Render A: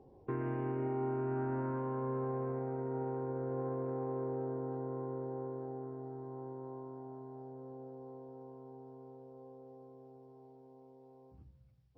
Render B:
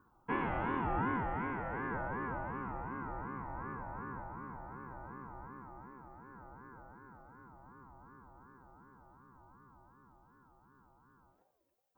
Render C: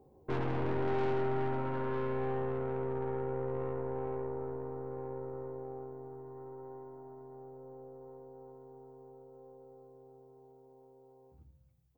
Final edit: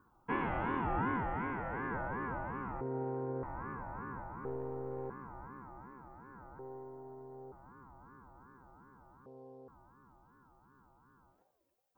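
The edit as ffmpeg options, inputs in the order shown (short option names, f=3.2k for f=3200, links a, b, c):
-filter_complex "[0:a]asplit=2[a][b];[2:a]asplit=2[c][d];[1:a]asplit=5[e][f][g][h][i];[e]atrim=end=2.812[j];[a]atrim=start=2.808:end=3.432[k];[f]atrim=start=3.428:end=4.452[l];[c]atrim=start=4.448:end=5.102[m];[g]atrim=start=5.098:end=6.592[n];[d]atrim=start=6.588:end=7.522[o];[h]atrim=start=7.518:end=9.262[p];[b]atrim=start=9.258:end=9.682[q];[i]atrim=start=9.678[r];[j][k]acrossfade=d=0.004:c1=hsin:c2=hsin[s];[s][l]acrossfade=d=0.004:c1=hsin:c2=hsin[t];[t][m]acrossfade=d=0.004:c1=hsin:c2=hsin[u];[u][n]acrossfade=d=0.004:c1=hsin:c2=hsin[v];[v][o]acrossfade=d=0.004:c1=hsin:c2=hsin[w];[w][p]acrossfade=d=0.004:c1=hsin:c2=hsin[x];[x][q]acrossfade=d=0.004:c1=hsin:c2=hsin[y];[y][r]acrossfade=d=0.004:c1=hsin:c2=hsin"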